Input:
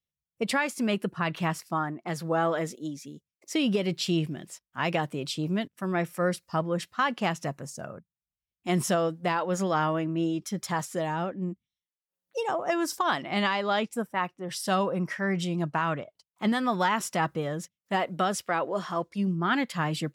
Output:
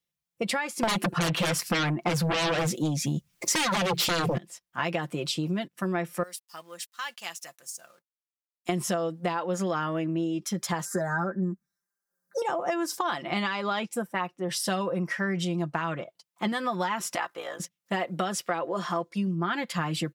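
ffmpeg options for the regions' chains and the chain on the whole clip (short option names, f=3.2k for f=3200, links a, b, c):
-filter_complex "[0:a]asettb=1/sr,asplit=3[a][b][c];[a]atrim=end=0.834[d];[b]atrim=start=0.83:end=4.38,asetpts=PTS-STARTPTS,afade=t=in:d=0.004:c=qsin,afade=t=out:st=3.546:d=0.004:c=qsin,asubboost=boost=7.5:cutoff=160,aeval=exprs='0.251*sin(PI/2*7.08*val(0)/0.251)':c=same[e];[c]atrim=start=4.376[f];[d][e]acrossfade=d=0.004:c1=hsin:c2=qsin[g];[g][f]acrossfade=d=0.004:c1=qsin:c2=hsin,asettb=1/sr,asplit=3[h][i][j];[h]atrim=end=6.234[k];[i]atrim=start=6.23:end=8.69,asetpts=PTS-STARTPTS,afade=t=in:d=0.004:c=qsin,afade=t=out:st=2.456:d=0.004:c=qsin,aeval=exprs='sgn(val(0))*max(abs(val(0))-0.00126,0)':c=same,aderivative[l];[j]atrim=start=8.686[m];[k][l]acrossfade=d=0.004:c1=hsin:c2=qsin[n];[n][m]acrossfade=d=0.004:c1=qsin:c2=hsin,asettb=1/sr,asplit=3[o][p][q];[o]atrim=end=10.854[r];[p]atrim=start=10.85:end=12.42,asetpts=PTS-STARTPTS,afade=t=in:d=0.004:c=qsin,afade=t=out:st=1.566:d=0.004:c=qsin,asuperstop=centerf=2900:order=4:qfactor=0.86,equalizer=f=1.6k:w=4.5:g=15,aecho=1:1:5:0.89,atrim=end_sample=69237[s];[q]atrim=start=12.416[t];[r][s]acrossfade=d=0.004:c1=hsin:c2=qsin[u];[u][t]acrossfade=d=0.004:c1=qsin:c2=hsin,asettb=1/sr,asplit=3[v][w][x];[v]atrim=end=17.154[y];[w]atrim=start=17.15:end=17.6,asetpts=PTS-STARTPTS,afade=t=in:d=0.004:c=qsin,afade=t=out:st=0.446:d=0.004:c=qsin,highpass=710,aeval=exprs='val(0)*sin(2*PI*29*n/s)':c=same[z];[x]atrim=start=17.596[aa];[y][z]acrossfade=d=0.004:c1=hsin:c2=qsin[ab];[ab][aa]acrossfade=d=0.004:c1=qsin:c2=hsin,lowshelf=f=94:g=-11,aecho=1:1:5.8:0.48,acompressor=threshold=-30dB:ratio=6,volume=4.5dB"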